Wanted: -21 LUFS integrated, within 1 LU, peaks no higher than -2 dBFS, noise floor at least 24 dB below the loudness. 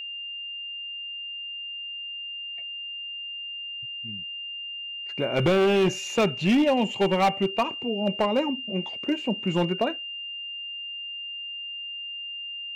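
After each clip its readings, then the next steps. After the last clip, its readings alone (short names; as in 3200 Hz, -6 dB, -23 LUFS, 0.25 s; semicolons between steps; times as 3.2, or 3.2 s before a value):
clipped 1.5%; flat tops at -16.5 dBFS; steady tone 2800 Hz; tone level -33 dBFS; loudness -27.5 LUFS; peak -16.5 dBFS; loudness target -21.0 LUFS
-> clip repair -16.5 dBFS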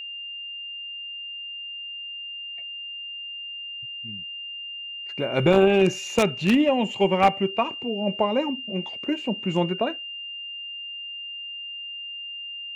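clipped 0.0%; steady tone 2800 Hz; tone level -33 dBFS
-> notch 2800 Hz, Q 30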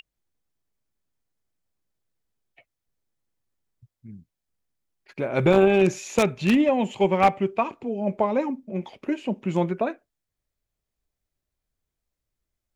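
steady tone none; loudness -23.5 LUFS; peak -7.0 dBFS; loudness target -21.0 LUFS
-> gain +2.5 dB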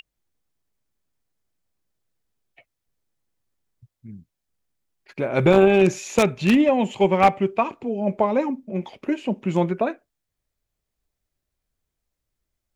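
loudness -21.0 LUFS; peak -4.5 dBFS; noise floor -82 dBFS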